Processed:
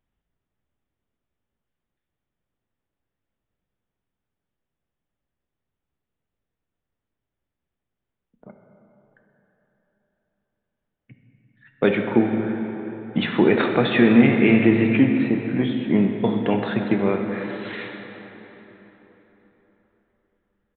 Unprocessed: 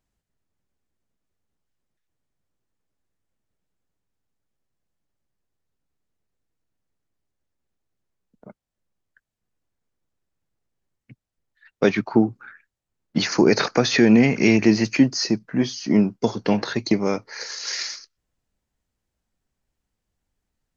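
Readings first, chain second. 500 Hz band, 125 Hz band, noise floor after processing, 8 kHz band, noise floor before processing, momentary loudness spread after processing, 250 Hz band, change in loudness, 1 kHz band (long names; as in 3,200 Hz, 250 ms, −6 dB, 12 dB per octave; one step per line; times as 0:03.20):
+1.0 dB, +1.0 dB, −84 dBFS, can't be measured, −84 dBFS, 15 LU, +1.0 dB, +0.5 dB, +1.0 dB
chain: dense smooth reverb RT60 4.1 s, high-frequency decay 0.65×, DRR 3 dB
downsampling to 8,000 Hz
level −1 dB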